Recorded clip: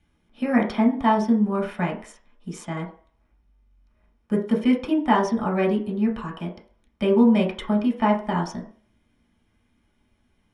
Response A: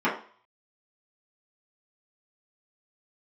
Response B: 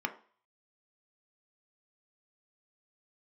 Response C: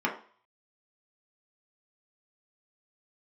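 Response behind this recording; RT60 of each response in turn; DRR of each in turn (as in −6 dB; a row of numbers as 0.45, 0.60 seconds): C; 0.45, 0.45, 0.45 seconds; −9.5, 5.5, −2.0 decibels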